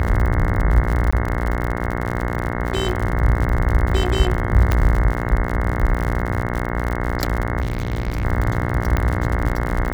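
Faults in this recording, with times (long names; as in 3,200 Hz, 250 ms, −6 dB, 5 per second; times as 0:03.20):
mains buzz 60 Hz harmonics 36 −24 dBFS
surface crackle 71 per second −23 dBFS
0:01.11–0:01.12: drop-out 15 ms
0:04.72: click −5 dBFS
0:07.61–0:08.25: clipping −18 dBFS
0:08.97: click −7 dBFS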